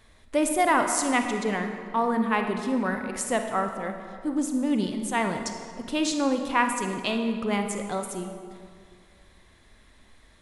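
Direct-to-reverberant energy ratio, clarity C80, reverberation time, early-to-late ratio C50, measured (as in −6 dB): 5.0 dB, 7.0 dB, 2.1 s, 6.0 dB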